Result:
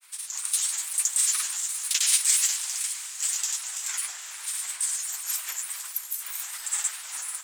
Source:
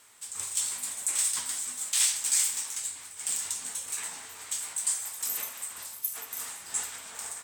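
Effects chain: granulator, pitch spread up and down by 3 st; high-pass 1.2 kHz 12 dB/octave; echo that smears into a reverb 472 ms, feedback 47%, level -13 dB; trim +6 dB

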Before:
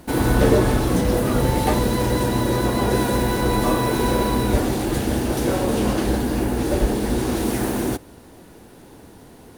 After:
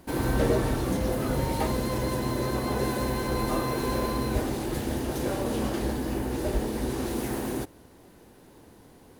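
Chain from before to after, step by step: speed mistake 24 fps film run at 25 fps; trim -8 dB

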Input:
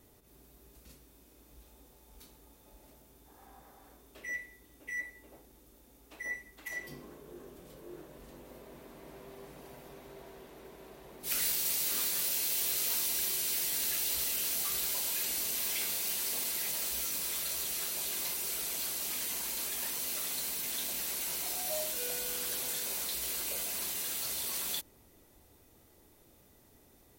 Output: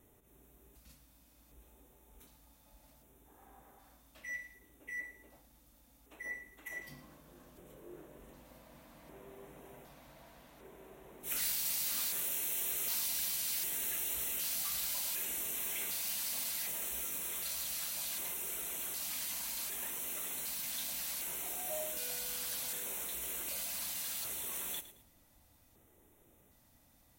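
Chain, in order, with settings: LFO notch square 0.66 Hz 400–4700 Hz; bit-crushed delay 110 ms, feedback 35%, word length 10-bit, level -14 dB; trim -3.5 dB

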